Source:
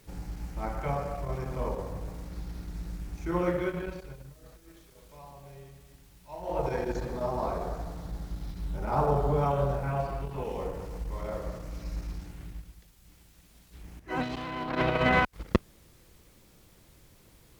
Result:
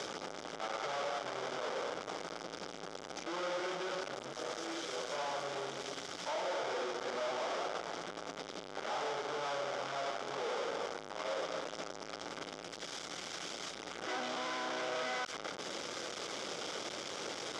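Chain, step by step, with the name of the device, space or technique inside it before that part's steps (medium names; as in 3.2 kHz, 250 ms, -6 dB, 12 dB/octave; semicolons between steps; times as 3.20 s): 4.02–4.42 s: bass shelf 73 Hz +6.5 dB; home computer beeper (one-bit comparator; cabinet simulation 580–5200 Hz, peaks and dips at 710 Hz -3 dB, 1 kHz -8 dB, 1.8 kHz -9 dB, 2.6 kHz -10 dB, 4.2 kHz -10 dB); trim +3 dB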